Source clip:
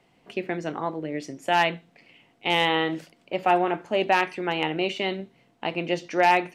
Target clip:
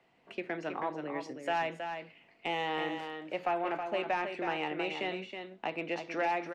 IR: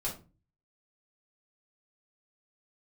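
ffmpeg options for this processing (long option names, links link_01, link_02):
-filter_complex "[0:a]acrossover=split=190|860[link_01][link_02][link_03];[link_01]acompressor=threshold=-46dB:ratio=4[link_04];[link_02]acompressor=threshold=-27dB:ratio=4[link_05];[link_03]acompressor=threshold=-29dB:ratio=4[link_06];[link_04][link_05][link_06]amix=inputs=3:normalize=0,asplit=2[link_07][link_08];[link_08]highpass=frequency=720:poles=1,volume=9dB,asoftclip=type=tanh:threshold=-13.5dB[link_09];[link_07][link_09]amix=inputs=2:normalize=0,lowpass=frequency=2200:poles=1,volume=-6dB,asetrate=42845,aresample=44100,atempo=1.0293,asplit=2[link_10][link_11];[link_11]aecho=0:1:321:0.447[link_12];[link_10][link_12]amix=inputs=2:normalize=0,volume=-6.5dB"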